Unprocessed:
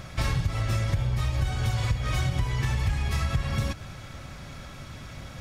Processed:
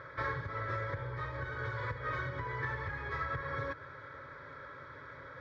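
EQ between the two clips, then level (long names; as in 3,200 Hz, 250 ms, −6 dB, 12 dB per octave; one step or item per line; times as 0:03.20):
loudspeaker in its box 190–2,600 Hz, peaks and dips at 210 Hz −8 dB, 340 Hz −9 dB, 650 Hz −5 dB, 1,200 Hz −6 dB, 2,300 Hz −5 dB
low-shelf EQ 320 Hz −6.5 dB
phaser with its sweep stopped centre 750 Hz, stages 6
+5.5 dB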